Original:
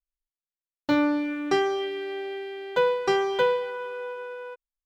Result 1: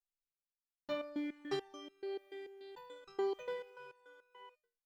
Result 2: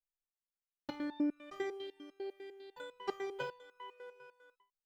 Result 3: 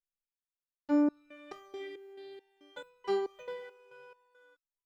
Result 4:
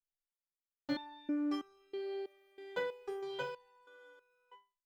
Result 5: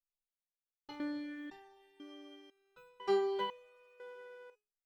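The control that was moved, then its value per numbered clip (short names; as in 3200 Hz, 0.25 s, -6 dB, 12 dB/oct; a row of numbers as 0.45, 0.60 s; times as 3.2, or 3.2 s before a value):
stepped resonator, rate: 6.9, 10, 4.6, 3.1, 2 Hz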